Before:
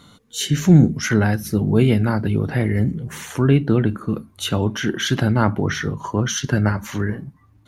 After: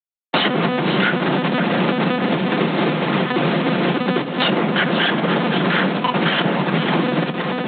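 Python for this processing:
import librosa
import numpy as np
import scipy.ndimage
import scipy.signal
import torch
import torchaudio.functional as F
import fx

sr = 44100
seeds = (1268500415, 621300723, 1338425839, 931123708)

p1 = fx.octave_divider(x, sr, octaves=1, level_db=0.0)
p2 = fx.schmitt(p1, sr, flips_db=-27.5)
p3 = p2 + fx.echo_single(p2, sr, ms=516, db=-10.0, dry=0)
p4 = fx.lpc_monotone(p3, sr, seeds[0], pitch_hz=250.0, order=10)
p5 = fx.rider(p4, sr, range_db=10, speed_s=0.5)
p6 = p4 + F.gain(torch.from_numpy(p5), -2.5).numpy()
p7 = scipy.signal.sosfilt(scipy.signal.butter(8, 160.0, 'highpass', fs=sr, output='sos'), p6)
p8 = fx.room_shoebox(p7, sr, seeds[1], volume_m3=2500.0, walls='furnished', distance_m=0.86)
p9 = fx.band_squash(p8, sr, depth_pct=70)
y = F.gain(torch.from_numpy(p9), -2.5).numpy()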